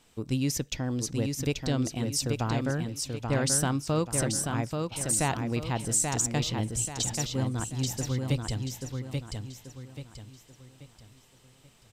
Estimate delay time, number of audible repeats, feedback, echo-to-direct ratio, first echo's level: 834 ms, 4, 37%, -4.0 dB, -4.5 dB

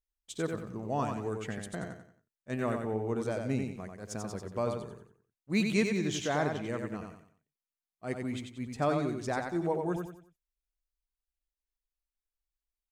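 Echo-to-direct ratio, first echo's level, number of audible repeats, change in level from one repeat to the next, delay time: -4.5 dB, -5.0 dB, 4, -9.0 dB, 91 ms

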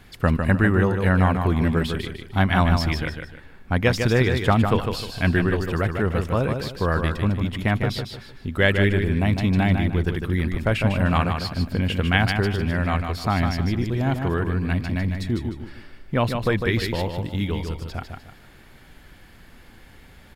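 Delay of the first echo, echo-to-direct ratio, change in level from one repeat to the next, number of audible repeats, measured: 152 ms, -5.5 dB, -9.5 dB, 3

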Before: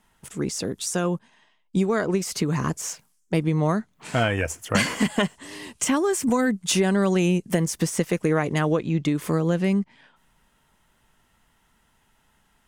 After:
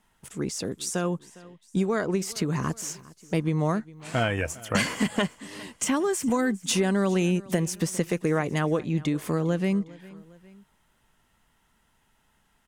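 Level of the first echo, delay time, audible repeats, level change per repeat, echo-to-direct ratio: -21.0 dB, 406 ms, 2, -5.5 dB, -20.0 dB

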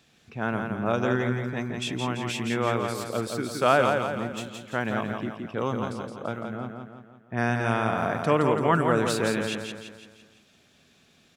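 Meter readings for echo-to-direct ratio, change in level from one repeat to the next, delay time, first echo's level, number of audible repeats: -4.0 dB, -6.0 dB, 169 ms, -5.0 dB, 5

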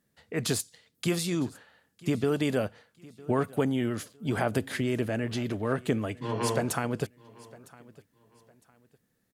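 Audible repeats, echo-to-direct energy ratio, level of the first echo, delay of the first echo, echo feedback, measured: 2, -21.5 dB, -22.0 dB, 957 ms, 30%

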